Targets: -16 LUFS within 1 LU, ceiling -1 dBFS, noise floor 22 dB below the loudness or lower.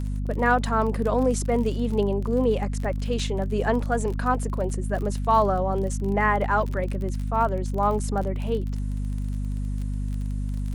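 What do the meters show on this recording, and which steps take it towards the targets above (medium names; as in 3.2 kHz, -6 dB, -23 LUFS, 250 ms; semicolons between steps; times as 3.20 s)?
tick rate 32 per s; hum 50 Hz; highest harmonic 250 Hz; hum level -25 dBFS; loudness -25.5 LUFS; peak level -8.0 dBFS; loudness target -16.0 LUFS
-> de-click; hum notches 50/100/150/200/250 Hz; trim +9.5 dB; peak limiter -1 dBFS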